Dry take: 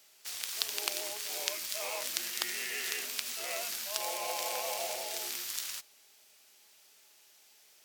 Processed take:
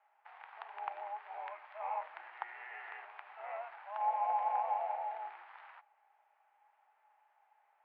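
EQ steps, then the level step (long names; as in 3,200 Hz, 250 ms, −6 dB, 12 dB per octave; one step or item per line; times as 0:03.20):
four-pole ladder high-pass 770 Hz, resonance 75%
low-pass filter 2,000 Hz 24 dB per octave
high-frequency loss of the air 320 metres
+8.0 dB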